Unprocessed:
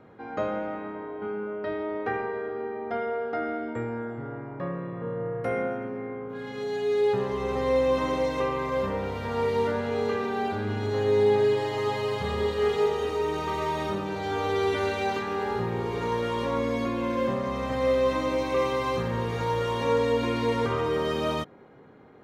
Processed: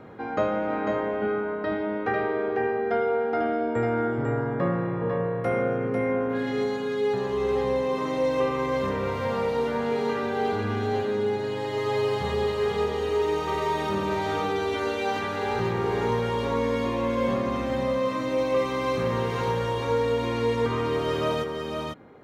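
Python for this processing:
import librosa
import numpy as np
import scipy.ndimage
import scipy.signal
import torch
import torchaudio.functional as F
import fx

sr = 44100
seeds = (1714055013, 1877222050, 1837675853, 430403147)

p1 = fx.rider(x, sr, range_db=10, speed_s=0.5)
y = p1 + fx.echo_single(p1, sr, ms=497, db=-4.0, dry=0)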